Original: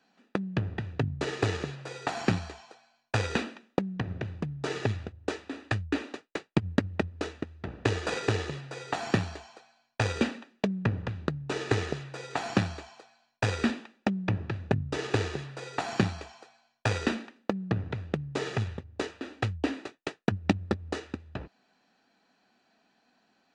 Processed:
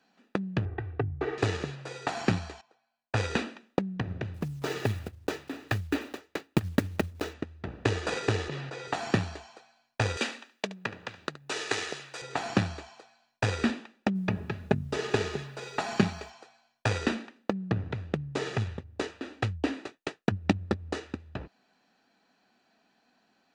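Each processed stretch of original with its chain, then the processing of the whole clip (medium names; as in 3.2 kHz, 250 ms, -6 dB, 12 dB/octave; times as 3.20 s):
0.65–1.38 s: low-pass 1.7 kHz + peaking EQ 200 Hz -12 dB 0.58 oct + comb 2.6 ms, depth 62%
2.61–3.17 s: treble shelf 4.7 kHz -10.5 dB + upward expansion, over -49 dBFS
4.34–7.35 s: block-companded coder 5-bit + delay 897 ms -22.5 dB
8.48–8.88 s: high-pass 150 Hz + distance through air 69 m + decay stretcher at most 26 dB/s
10.17–12.22 s: high-pass 360 Hz 6 dB/octave + tilt EQ +2.5 dB/octave + delay 72 ms -16 dB
14.14–16.29 s: comb 4.8 ms, depth 46% + added noise pink -69 dBFS
whole clip: none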